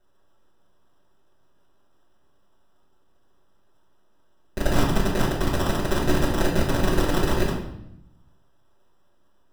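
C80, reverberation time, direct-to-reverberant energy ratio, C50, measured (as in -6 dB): 7.5 dB, 0.80 s, -10.0 dB, 4.0 dB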